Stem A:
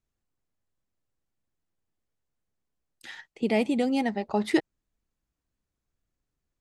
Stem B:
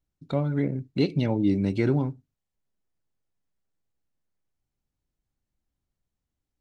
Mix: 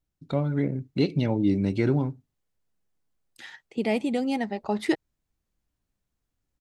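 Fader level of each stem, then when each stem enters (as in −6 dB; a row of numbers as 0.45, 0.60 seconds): −1.0, 0.0 decibels; 0.35, 0.00 seconds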